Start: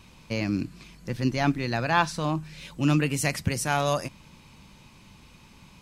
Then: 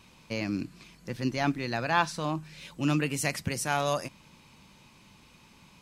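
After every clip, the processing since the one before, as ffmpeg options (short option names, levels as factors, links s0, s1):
-af "lowshelf=f=110:g=-9,volume=0.75"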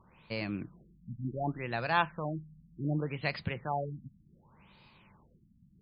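-af "equalizer=f=270:t=o:w=0.42:g=-7.5,afftfilt=real='re*lt(b*sr/1024,260*pow(5100/260,0.5+0.5*sin(2*PI*0.67*pts/sr)))':imag='im*lt(b*sr/1024,260*pow(5100/260,0.5+0.5*sin(2*PI*0.67*pts/sr)))':win_size=1024:overlap=0.75,volume=0.75"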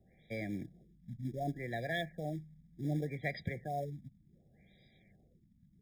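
-filter_complex "[0:a]acrossover=split=190|860|1800[s0][s1][s2][s3];[s1]acrusher=bits=4:mode=log:mix=0:aa=0.000001[s4];[s0][s4][s2][s3]amix=inputs=4:normalize=0,afftfilt=real='re*eq(mod(floor(b*sr/1024/800),2),0)':imag='im*eq(mod(floor(b*sr/1024/800),2),0)':win_size=1024:overlap=0.75,volume=0.708"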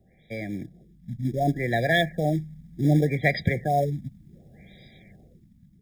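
-af "dynaudnorm=f=480:g=5:m=2.82,volume=2"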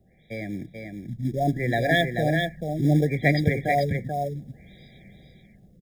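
-af "aecho=1:1:436:0.562"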